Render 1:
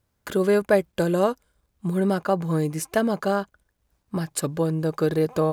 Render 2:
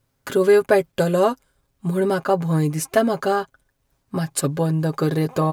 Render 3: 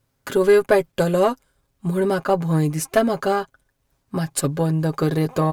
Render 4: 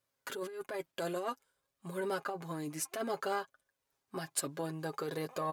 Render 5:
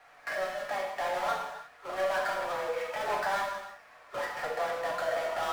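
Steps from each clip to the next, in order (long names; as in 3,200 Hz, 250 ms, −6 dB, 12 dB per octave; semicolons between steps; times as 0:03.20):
comb filter 7.4 ms, depth 63%; level +2.5 dB
harmonic generator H 4 −25 dB, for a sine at −4.5 dBFS
flanger 0.56 Hz, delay 1.6 ms, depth 1.6 ms, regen +62%; compressor whose output falls as the input rises −24 dBFS, ratio −1; high-pass filter 570 Hz 6 dB per octave; level −7.5 dB
single-sideband voice off tune +190 Hz 320–2,200 Hz; power curve on the samples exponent 0.5; reverb whose tail is shaped and stops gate 370 ms falling, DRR −1.5 dB; level −1.5 dB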